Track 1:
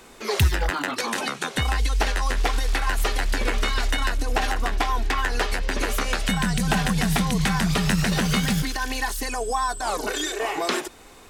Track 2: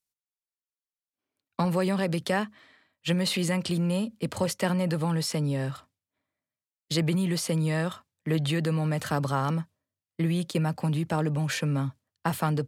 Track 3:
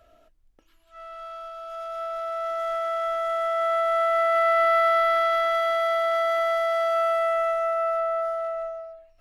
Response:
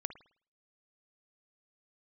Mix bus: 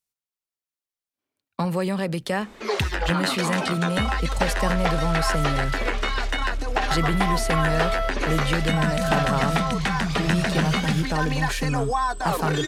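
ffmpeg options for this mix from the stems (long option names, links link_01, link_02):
-filter_complex "[0:a]aemphasis=mode=reproduction:type=50fm,acrossover=split=360[link_01][link_02];[link_01]acompressor=threshold=-25dB:ratio=6[link_03];[link_03][link_02]amix=inputs=2:normalize=0,adelay=2400,volume=1dB[link_04];[1:a]volume=0.5dB,asplit=3[link_05][link_06][link_07];[link_06]volume=-22.5dB[link_08];[2:a]highshelf=frequency=9500:gain=12,asplit=2[link_09][link_10];[link_10]adelay=2.2,afreqshift=-0.71[link_11];[link_09][link_11]amix=inputs=2:normalize=1,adelay=1800,volume=-3dB[link_12];[link_07]apad=whole_len=485642[link_13];[link_12][link_13]sidechaingate=range=-33dB:threshold=-51dB:ratio=16:detection=peak[link_14];[3:a]atrim=start_sample=2205[link_15];[link_08][link_15]afir=irnorm=-1:irlink=0[link_16];[link_04][link_05][link_14][link_16]amix=inputs=4:normalize=0"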